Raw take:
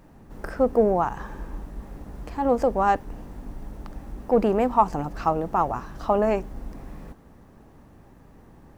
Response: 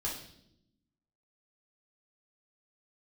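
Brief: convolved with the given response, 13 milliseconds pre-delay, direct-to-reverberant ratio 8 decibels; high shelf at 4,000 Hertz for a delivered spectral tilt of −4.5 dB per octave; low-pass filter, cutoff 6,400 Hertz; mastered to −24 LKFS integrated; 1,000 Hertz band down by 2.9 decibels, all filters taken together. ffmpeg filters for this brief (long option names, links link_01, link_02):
-filter_complex "[0:a]lowpass=6400,equalizer=frequency=1000:width_type=o:gain=-3.5,highshelf=frequency=4000:gain=-4.5,asplit=2[link_01][link_02];[1:a]atrim=start_sample=2205,adelay=13[link_03];[link_02][link_03]afir=irnorm=-1:irlink=0,volume=-10.5dB[link_04];[link_01][link_04]amix=inputs=2:normalize=0,volume=0.5dB"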